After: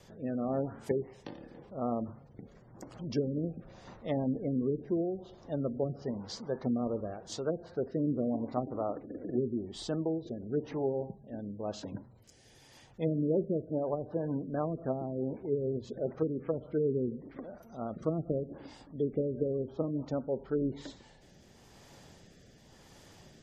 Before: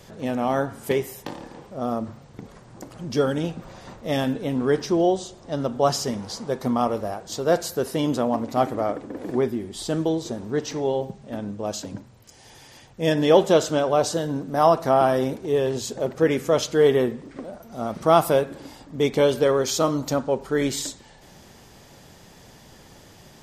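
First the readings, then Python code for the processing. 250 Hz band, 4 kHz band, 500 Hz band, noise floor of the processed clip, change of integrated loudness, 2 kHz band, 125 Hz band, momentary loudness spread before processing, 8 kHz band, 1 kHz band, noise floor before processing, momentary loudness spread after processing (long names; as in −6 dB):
−8.0 dB, −19.0 dB, −12.0 dB, −59 dBFS, −11.5 dB, −21.5 dB, −7.0 dB, 15 LU, −22.0 dB, −18.5 dB, −49 dBFS, 13 LU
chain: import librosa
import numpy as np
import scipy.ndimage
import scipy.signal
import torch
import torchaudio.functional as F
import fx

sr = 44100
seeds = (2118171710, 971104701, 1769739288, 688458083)

y = fx.rotary(x, sr, hz=0.9)
y = fx.env_lowpass_down(y, sr, base_hz=320.0, full_db=-18.5)
y = fx.spec_gate(y, sr, threshold_db=-30, keep='strong')
y = y * 10.0 ** (-6.0 / 20.0)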